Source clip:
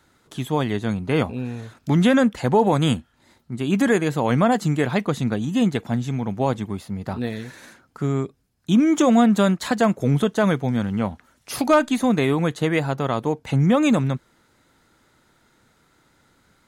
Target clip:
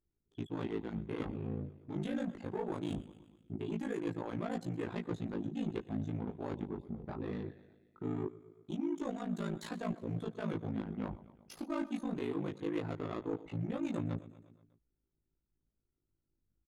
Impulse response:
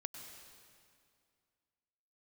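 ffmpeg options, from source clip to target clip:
-af "deesser=0.55,anlmdn=15.8,equalizer=frequency=340:width=2.8:gain=10,areverse,acompressor=threshold=-25dB:ratio=16,areverse,aecho=1:1:120|240|360|480|600:0.106|0.0636|0.0381|0.0229|0.0137,asoftclip=type=tanh:threshold=-24.5dB,aeval=exprs='val(0)*sin(2*PI*27*n/s)':channel_layout=same,flanger=delay=17:depth=4.2:speed=0.21,volume=-1dB"

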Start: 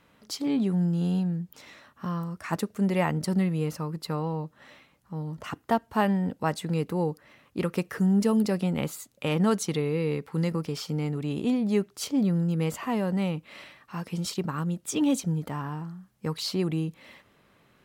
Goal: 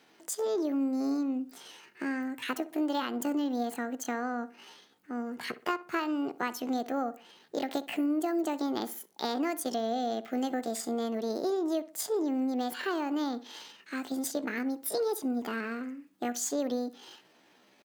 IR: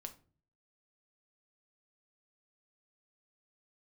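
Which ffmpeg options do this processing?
-filter_complex "[0:a]highpass=140,acompressor=threshold=-27dB:ratio=8,asetrate=68011,aresample=44100,atempo=0.64842,asplit=2[link_01][link_02];[link_02]adelay=62,lowpass=frequency=2100:poles=1,volume=-15.5dB,asplit=2[link_03][link_04];[link_04]adelay=62,lowpass=frequency=2100:poles=1,volume=0.36,asplit=2[link_05][link_06];[link_06]adelay=62,lowpass=frequency=2100:poles=1,volume=0.36[link_07];[link_03][link_05][link_07]amix=inputs=3:normalize=0[link_08];[link_01][link_08]amix=inputs=2:normalize=0"

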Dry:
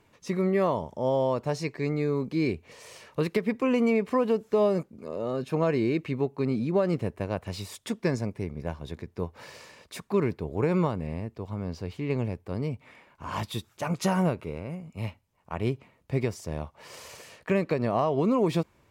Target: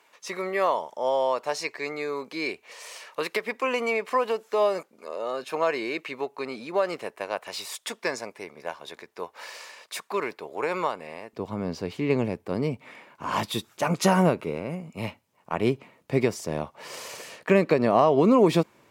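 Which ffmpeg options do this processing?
ffmpeg -i in.wav -af "asetnsamples=nb_out_samples=441:pad=0,asendcmd='11.33 highpass f 190',highpass=700,volume=6.5dB" out.wav

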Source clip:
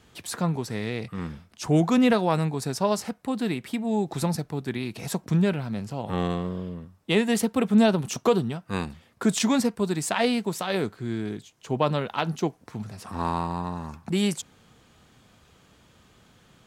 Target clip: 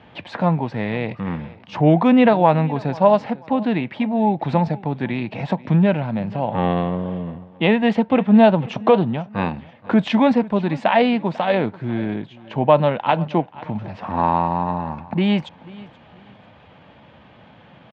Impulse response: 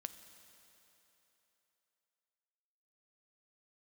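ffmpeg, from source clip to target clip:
-filter_complex "[0:a]asplit=2[link_01][link_02];[link_02]acompressor=threshold=-38dB:ratio=4,volume=-2dB[link_03];[link_01][link_03]amix=inputs=2:normalize=0,aecho=1:1:453|906:0.0944|0.0302,atempo=0.93,highpass=100,equalizer=frequency=400:width_type=q:width=4:gain=-6,equalizer=frequency=590:width_type=q:width=4:gain=6,equalizer=frequency=860:width_type=q:width=4:gain=6,equalizer=frequency=1300:width_type=q:width=4:gain=-5,lowpass=frequency=3000:width=0.5412,lowpass=frequency=3000:width=1.3066,volume=5.5dB"

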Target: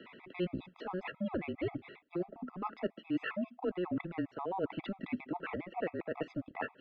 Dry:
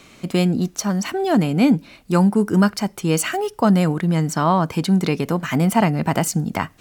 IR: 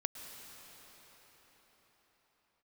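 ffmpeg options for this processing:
-af "lowshelf=frequency=320:width_type=q:width=3:gain=-12,areverse,acompressor=threshold=-27dB:ratio=20,areverse,highpass=frequency=290:width_type=q:width=0.5412,highpass=frequency=290:width_type=q:width=1.307,lowpass=frequency=3200:width_type=q:width=0.5176,lowpass=frequency=3200:width_type=q:width=0.7071,lowpass=frequency=3200:width_type=q:width=1.932,afreqshift=-180,afftfilt=real='re*gt(sin(2*PI*7.4*pts/sr)*(1-2*mod(floor(b*sr/1024/660),2)),0)':imag='im*gt(sin(2*PI*7.4*pts/sr)*(1-2*mod(floor(b*sr/1024/660),2)),0)':win_size=1024:overlap=0.75,volume=-2dB"

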